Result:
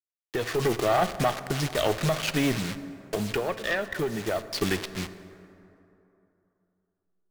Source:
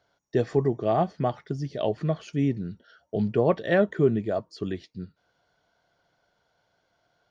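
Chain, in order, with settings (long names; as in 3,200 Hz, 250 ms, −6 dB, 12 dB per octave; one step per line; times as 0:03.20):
hold until the input has moved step −40.5 dBFS
low-pass filter 3,900 Hz 6 dB per octave
tilt shelving filter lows −10 dB
0:02.56–0:04.62: downward compressor 8 to 1, threshold −37 dBFS, peak gain reduction 17.5 dB
brickwall limiter −24.5 dBFS, peak gain reduction 9.5 dB
automatic gain control gain up to 8 dB
tube saturation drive 22 dB, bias 0.65
dense smooth reverb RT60 3 s, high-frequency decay 0.45×, DRR 12 dB
level +7.5 dB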